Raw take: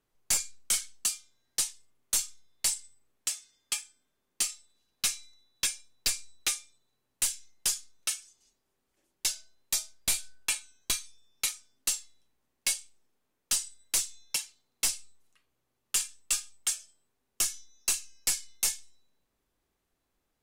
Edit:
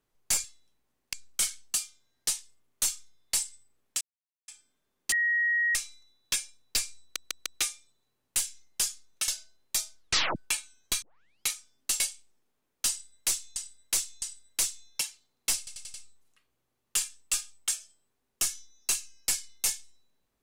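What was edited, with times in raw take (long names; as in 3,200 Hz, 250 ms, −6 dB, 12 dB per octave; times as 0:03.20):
0:03.32–0:03.79: silence
0:04.43–0:05.06: beep over 1,890 Hz −23 dBFS
0:06.32: stutter 0.15 s, 4 plays
0:08.14–0:09.26: remove
0:09.96: tape stop 0.38 s
0:11.00: tape start 0.45 s
0:11.98–0:12.67: move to 0:00.44
0:13.57–0:14.23: repeat, 3 plays
0:14.93: stutter 0.09 s, 5 plays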